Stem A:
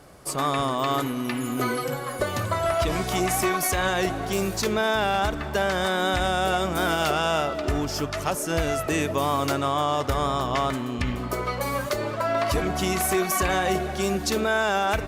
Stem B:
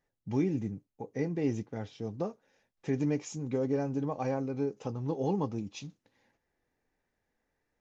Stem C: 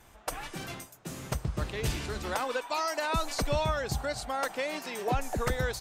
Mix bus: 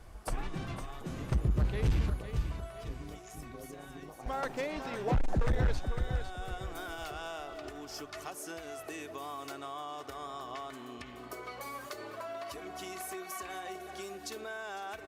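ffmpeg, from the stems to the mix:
ffmpeg -i stem1.wav -i stem2.wav -i stem3.wav -filter_complex "[0:a]aecho=1:1:2.7:0.41,acompressor=threshold=-27dB:ratio=6,highpass=frequency=330:poles=1,volume=-10.5dB,asplit=2[link_01][link_02];[link_02]volume=-18dB[link_03];[1:a]acompressor=threshold=-34dB:ratio=6,tremolo=f=110:d=0.919,volume=-7dB,asplit=2[link_04][link_05];[2:a]aemphasis=mode=reproduction:type=bsi,volume=-4dB,asplit=3[link_06][link_07][link_08];[link_06]atrim=end=2.1,asetpts=PTS-STARTPTS,afade=type=out:start_time=2.096:duration=0.004:curve=hsin[link_09];[link_07]atrim=start=2.1:end=4.26,asetpts=PTS-STARTPTS,volume=0[link_10];[link_08]atrim=start=4.26,asetpts=PTS-STARTPTS,afade=type=in:duration=0.004:curve=hsin[link_11];[link_09][link_10][link_11]concat=n=3:v=0:a=1,asplit=2[link_12][link_13];[link_13]volume=-8.5dB[link_14];[link_05]apad=whole_len=664809[link_15];[link_01][link_15]sidechaincompress=threshold=-58dB:ratio=3:attack=36:release=1080[link_16];[link_03][link_14]amix=inputs=2:normalize=0,aecho=0:1:504|1008|1512|2016|2520:1|0.36|0.13|0.0467|0.0168[link_17];[link_16][link_04][link_12][link_17]amix=inputs=4:normalize=0,asoftclip=type=hard:threshold=-23dB" out.wav

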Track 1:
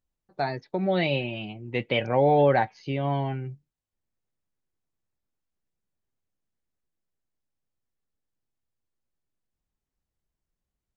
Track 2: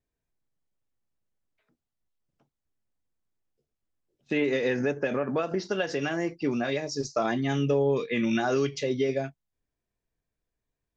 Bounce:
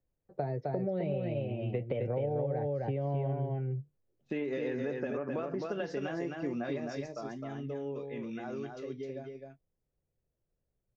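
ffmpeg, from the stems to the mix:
ffmpeg -i stem1.wav -i stem2.wav -filter_complex "[0:a]equalizer=frequency=125:width_type=o:width=1:gain=8,equalizer=frequency=250:width_type=o:width=1:gain=-3,equalizer=frequency=500:width_type=o:width=1:gain=11,equalizer=frequency=1000:width_type=o:width=1:gain=-6,equalizer=frequency=4000:width_type=o:width=1:gain=-6,acrossover=split=270|740[link_01][link_02][link_03];[link_01]acompressor=threshold=-26dB:ratio=4[link_04];[link_02]acompressor=threshold=-26dB:ratio=4[link_05];[link_03]acompressor=threshold=-36dB:ratio=4[link_06];[link_04][link_05][link_06]amix=inputs=3:normalize=0,volume=-1dB,asplit=2[link_07][link_08];[link_08]volume=-3dB[link_09];[1:a]volume=-4.5dB,afade=type=out:start_time=6.79:duration=0.38:silence=0.334965,asplit=2[link_10][link_11];[link_11]volume=-4.5dB[link_12];[link_09][link_12]amix=inputs=2:normalize=0,aecho=0:1:260:1[link_13];[link_07][link_10][link_13]amix=inputs=3:normalize=0,highshelf=frequency=2100:gain=-10.5,acompressor=threshold=-31dB:ratio=4" out.wav

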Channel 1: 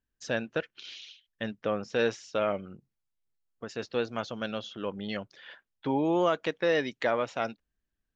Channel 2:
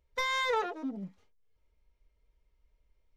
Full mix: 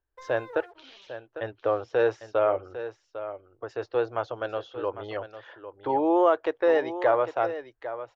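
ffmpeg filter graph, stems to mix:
ffmpeg -i stem1.wav -i stem2.wav -filter_complex "[0:a]volume=1.5dB,asplit=2[link_01][link_02];[link_02]volume=-12dB[link_03];[1:a]acrusher=bits=6:mix=0:aa=0.5,volume=-16.5dB[link_04];[link_03]aecho=0:1:801:1[link_05];[link_01][link_04][link_05]amix=inputs=3:normalize=0,firequalizer=gain_entry='entry(120,0);entry(170,-29);entry(320,2);entry(810,6);entry(2300,-7);entry(6900,-14)':delay=0.05:min_phase=1" out.wav

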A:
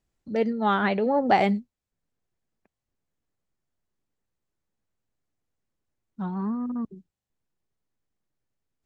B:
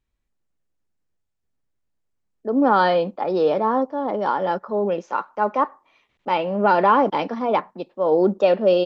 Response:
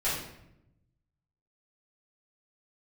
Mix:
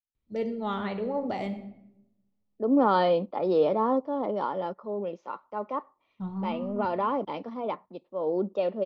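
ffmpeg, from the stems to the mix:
-filter_complex "[0:a]agate=range=-27dB:threshold=-35dB:ratio=16:detection=peak,asubboost=boost=3:cutoff=150,alimiter=limit=-14.5dB:level=0:latency=1:release=392,volume=-7dB,asplit=2[link_01][link_02];[link_02]volume=-15.5dB[link_03];[1:a]lowpass=4200,adelay=150,volume=-3.5dB,afade=type=out:start_time=4.14:duration=0.69:silence=0.473151[link_04];[2:a]atrim=start_sample=2205[link_05];[link_03][link_05]afir=irnorm=-1:irlink=0[link_06];[link_01][link_04][link_06]amix=inputs=3:normalize=0,equalizer=frequency=100:width_type=o:width=0.33:gain=7,equalizer=frequency=800:width_type=o:width=0.33:gain=-4,equalizer=frequency=1600:width_type=o:width=0.33:gain=-12,equalizer=frequency=2500:width_type=o:width=0.33:gain=-3"

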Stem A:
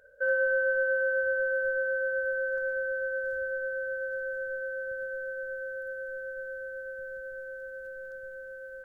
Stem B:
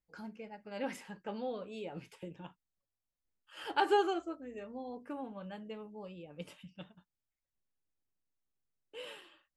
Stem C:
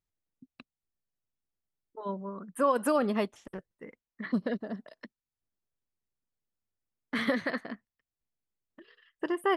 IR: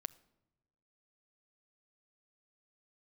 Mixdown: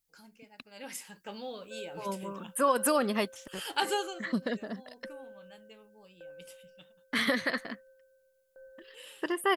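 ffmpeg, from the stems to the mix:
-filter_complex "[0:a]lowpass=frequency=780:width_type=q:width=5.5,aeval=exprs='val(0)*pow(10,-26*if(lt(mod(0.85*n/s,1),2*abs(0.85)/1000),1-mod(0.85*n/s,1)/(2*abs(0.85)/1000),(mod(0.85*n/s,1)-2*abs(0.85)/1000)/(1-2*abs(0.85)/1000))/20)':channel_layout=same,adelay=1500,volume=-15dB[link_01];[1:a]aemphasis=mode=production:type=cd,volume=-3dB,afade=type=in:start_time=0.73:duration=0.57:silence=0.398107,afade=type=out:start_time=3.85:duration=0.32:silence=0.375837[link_02];[2:a]volume=-2dB[link_03];[link_01][link_02][link_03]amix=inputs=3:normalize=0,highshelf=frequency=5500:gain=-6.5,crystalizer=i=6:c=0"

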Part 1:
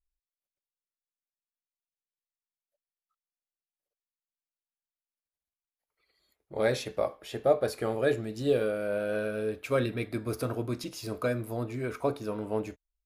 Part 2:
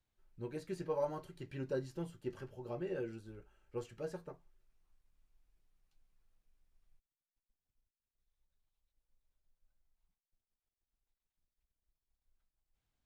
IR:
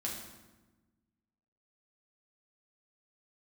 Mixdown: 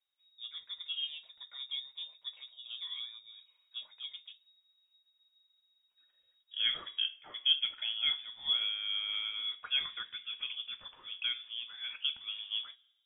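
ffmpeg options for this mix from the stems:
-filter_complex "[0:a]highpass=frequency=370:width=0.5412,highpass=frequency=370:width=1.3066,volume=-5dB,asplit=2[link_01][link_02];[link_02]volume=-21dB[link_03];[1:a]volume=-2.5dB[link_04];[2:a]atrim=start_sample=2205[link_05];[link_03][link_05]afir=irnorm=-1:irlink=0[link_06];[link_01][link_04][link_06]amix=inputs=3:normalize=0,lowpass=frequency=3200:width_type=q:width=0.5098,lowpass=frequency=3200:width_type=q:width=0.6013,lowpass=frequency=3200:width_type=q:width=0.9,lowpass=frequency=3200:width_type=q:width=2.563,afreqshift=-3800"

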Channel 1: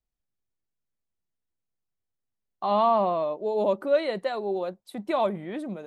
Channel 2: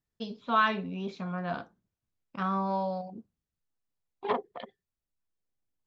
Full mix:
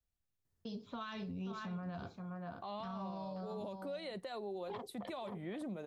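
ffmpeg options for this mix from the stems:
ffmpeg -i stem1.wav -i stem2.wav -filter_complex "[0:a]acompressor=threshold=-33dB:ratio=1.5,volume=-3.5dB[link_01];[1:a]equalizer=frequency=2900:width_type=o:width=1.8:gain=-7,adelay=450,volume=1.5dB,asplit=2[link_02][link_03];[link_03]volume=-12dB,aecho=0:1:528:1[link_04];[link_01][link_02][link_04]amix=inputs=3:normalize=0,equalizer=frequency=88:width_type=o:width=0.8:gain=10.5,acrossover=split=130|3000[link_05][link_06][link_07];[link_06]acompressor=threshold=-39dB:ratio=6[link_08];[link_05][link_08][link_07]amix=inputs=3:normalize=0,alimiter=level_in=11dB:limit=-24dB:level=0:latency=1:release=69,volume=-11dB" out.wav

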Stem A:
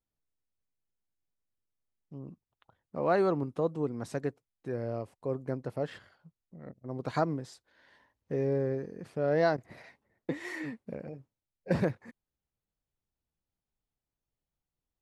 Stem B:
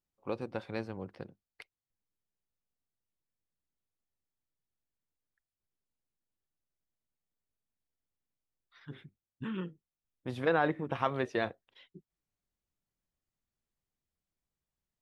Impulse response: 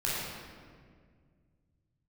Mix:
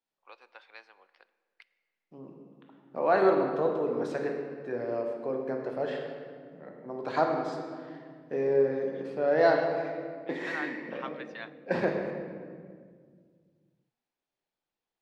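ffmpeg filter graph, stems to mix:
-filter_complex "[0:a]volume=0dB,asplit=2[link_01][link_02];[link_02]volume=-6dB[link_03];[1:a]highpass=1200,volume=-4dB,asplit=2[link_04][link_05];[link_05]volume=-23.5dB[link_06];[2:a]atrim=start_sample=2205[link_07];[link_03][link_06]amix=inputs=2:normalize=0[link_08];[link_08][link_07]afir=irnorm=-1:irlink=0[link_09];[link_01][link_04][link_09]amix=inputs=3:normalize=0,acrossover=split=250 5400:gain=0.0631 1 0.158[link_10][link_11][link_12];[link_10][link_11][link_12]amix=inputs=3:normalize=0"

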